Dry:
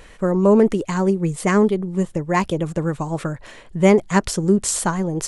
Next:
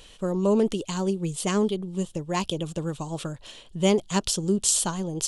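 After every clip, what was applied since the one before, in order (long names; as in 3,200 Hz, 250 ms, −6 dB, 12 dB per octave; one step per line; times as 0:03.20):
high shelf with overshoot 2,500 Hz +7 dB, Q 3
level −7.5 dB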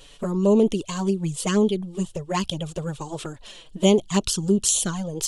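flanger swept by the level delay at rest 8.1 ms, full sweep at −19.5 dBFS
level +4.5 dB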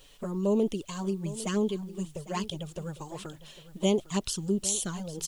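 background noise white −60 dBFS
single-tap delay 803 ms −16 dB
level −8 dB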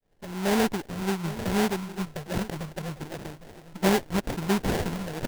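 fade in at the beginning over 0.64 s
delay with a high-pass on its return 133 ms, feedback 65%, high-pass 4,300 Hz, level −11 dB
sample-rate reduction 1,200 Hz, jitter 20%
level +3 dB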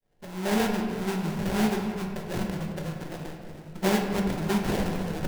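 convolution reverb RT60 2.4 s, pre-delay 5 ms, DRR 1.5 dB
level −3 dB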